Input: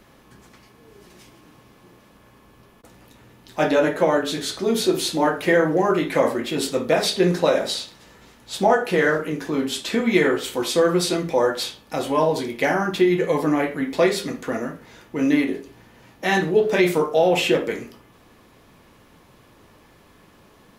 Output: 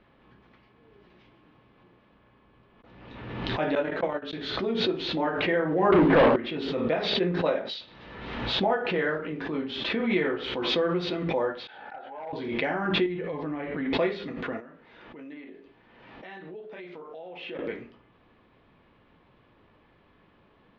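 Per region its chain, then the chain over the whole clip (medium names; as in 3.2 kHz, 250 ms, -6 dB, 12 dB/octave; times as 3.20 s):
3.75–4.33 s: gate -18 dBFS, range -33 dB + treble shelf 5.2 kHz +9.5 dB
5.92–6.36 s: low-pass 1.3 kHz 24 dB/octave + waveshaping leveller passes 5
7.14–7.81 s: treble shelf 9.6 kHz +3 dB + three bands expanded up and down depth 100%
11.67–12.33 s: two resonant band-passes 1.1 kHz, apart 0.88 oct + hard clipper -25.5 dBFS
13.06–13.75 s: bass shelf 130 Hz +7.5 dB + compression 2:1, threshold -25 dBFS
14.60–17.59 s: peaking EQ 82 Hz -10.5 dB 2.1 oct + compression 2.5:1, threshold -39 dBFS
whole clip: inverse Chebyshev low-pass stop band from 8.2 kHz, stop band 50 dB; swell ahead of each attack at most 39 dB/s; trim -8.5 dB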